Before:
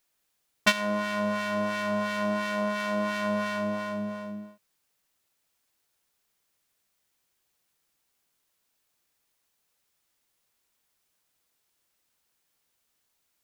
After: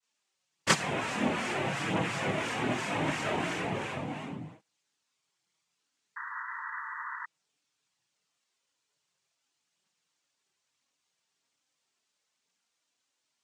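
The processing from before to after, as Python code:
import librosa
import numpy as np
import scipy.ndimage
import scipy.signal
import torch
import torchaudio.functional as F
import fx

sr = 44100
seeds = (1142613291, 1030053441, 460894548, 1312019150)

y = fx.noise_vocoder(x, sr, seeds[0], bands=4)
y = fx.chorus_voices(y, sr, voices=4, hz=0.19, base_ms=24, depth_ms=4.1, mix_pct=70)
y = fx.spec_paint(y, sr, seeds[1], shape='noise', start_s=6.16, length_s=1.1, low_hz=890.0, high_hz=2000.0, level_db=-39.0)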